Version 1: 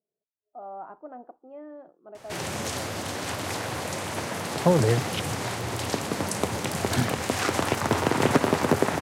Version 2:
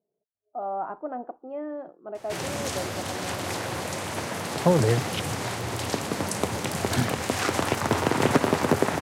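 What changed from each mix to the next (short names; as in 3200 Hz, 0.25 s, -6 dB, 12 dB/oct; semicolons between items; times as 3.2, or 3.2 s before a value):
speech +8.5 dB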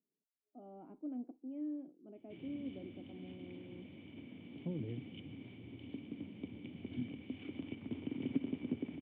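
background -9.0 dB; master: add vocal tract filter i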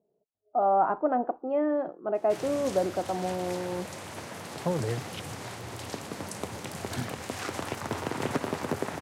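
speech +7.5 dB; master: remove vocal tract filter i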